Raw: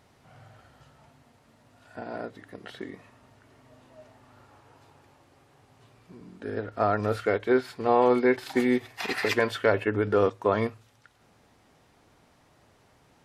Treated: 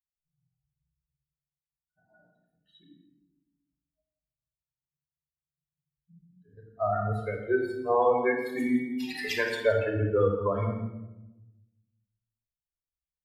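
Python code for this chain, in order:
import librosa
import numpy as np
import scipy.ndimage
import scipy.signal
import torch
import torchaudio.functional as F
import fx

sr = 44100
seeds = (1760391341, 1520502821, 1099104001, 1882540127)

y = fx.bin_expand(x, sr, power=3.0)
y = fx.peak_eq(y, sr, hz=280.0, db=14.0, octaves=1.5, at=(2.81, 6.39), fade=0.02)
y = y + 10.0 ** (-15.0 / 20.0) * np.pad(y, (int(169 * sr / 1000.0), 0))[:len(y)]
y = fx.room_shoebox(y, sr, seeds[0], volume_m3=3700.0, walls='furnished', distance_m=5.4)
y = F.gain(torch.from_numpy(y), -1.0).numpy()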